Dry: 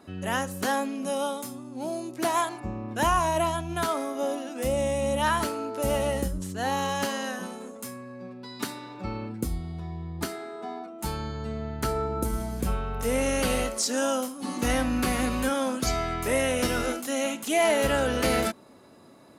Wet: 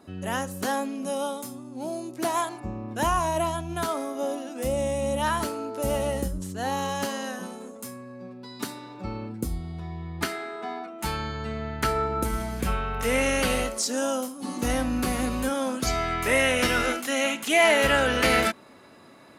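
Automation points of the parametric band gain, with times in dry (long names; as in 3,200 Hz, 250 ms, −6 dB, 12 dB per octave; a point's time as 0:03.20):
parametric band 2,100 Hz 1.9 octaves
0:09.46 −2.5 dB
0:10.15 +9 dB
0:13.15 +9 dB
0:13.96 −3 dB
0:15.54 −3 dB
0:16.30 +8.5 dB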